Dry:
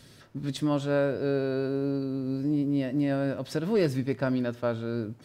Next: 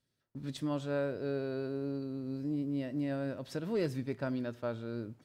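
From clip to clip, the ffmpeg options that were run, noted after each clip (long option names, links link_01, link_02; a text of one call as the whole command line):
ffmpeg -i in.wav -af "agate=range=-22dB:threshold=-46dB:ratio=16:detection=peak,volume=-8dB" out.wav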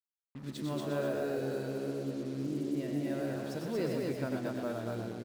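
ffmpeg -i in.wav -filter_complex "[0:a]asplit=2[link_01][link_02];[link_02]aecho=0:1:96.21|233.2:0.501|0.708[link_03];[link_01][link_03]amix=inputs=2:normalize=0,acrusher=bits=7:mix=0:aa=0.5,asplit=2[link_04][link_05];[link_05]asplit=5[link_06][link_07][link_08][link_09][link_10];[link_06]adelay=120,afreqshift=74,volume=-7dB[link_11];[link_07]adelay=240,afreqshift=148,volume=-15dB[link_12];[link_08]adelay=360,afreqshift=222,volume=-22.9dB[link_13];[link_09]adelay=480,afreqshift=296,volume=-30.9dB[link_14];[link_10]adelay=600,afreqshift=370,volume=-38.8dB[link_15];[link_11][link_12][link_13][link_14][link_15]amix=inputs=5:normalize=0[link_16];[link_04][link_16]amix=inputs=2:normalize=0,volume=-2.5dB" out.wav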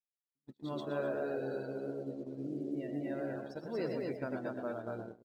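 ffmpeg -i in.wav -af "afftdn=noise_reduction=19:noise_floor=-48,agate=range=-45dB:threshold=-37dB:ratio=16:detection=peak,lowshelf=frequency=270:gain=-8.5" out.wav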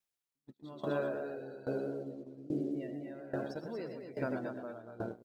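ffmpeg -i in.wav -filter_complex "[0:a]asplit=2[link_01][link_02];[link_02]alimiter=level_in=12dB:limit=-24dB:level=0:latency=1,volume=-12dB,volume=2dB[link_03];[link_01][link_03]amix=inputs=2:normalize=0,aeval=exprs='val(0)*pow(10,-18*if(lt(mod(1.2*n/s,1),2*abs(1.2)/1000),1-mod(1.2*n/s,1)/(2*abs(1.2)/1000),(mod(1.2*n/s,1)-2*abs(1.2)/1000)/(1-2*abs(1.2)/1000))/20)':channel_layout=same,volume=1.5dB" out.wav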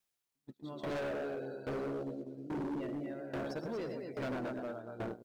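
ffmpeg -i in.wav -af "asoftclip=type=hard:threshold=-38.5dB,volume=3.5dB" out.wav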